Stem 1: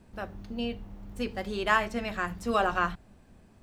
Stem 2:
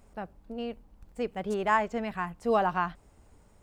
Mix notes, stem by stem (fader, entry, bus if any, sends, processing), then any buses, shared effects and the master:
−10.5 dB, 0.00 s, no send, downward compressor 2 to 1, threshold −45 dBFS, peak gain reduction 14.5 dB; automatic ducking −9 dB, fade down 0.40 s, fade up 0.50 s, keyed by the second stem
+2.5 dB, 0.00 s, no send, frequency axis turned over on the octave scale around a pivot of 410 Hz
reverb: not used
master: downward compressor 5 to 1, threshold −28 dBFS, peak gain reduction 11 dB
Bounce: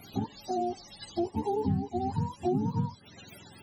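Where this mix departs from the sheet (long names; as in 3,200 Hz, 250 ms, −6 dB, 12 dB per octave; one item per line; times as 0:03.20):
stem 1: missing downward compressor 2 to 1, threshold −45 dBFS, peak gain reduction 14.5 dB
stem 2 +2.5 dB → +13.0 dB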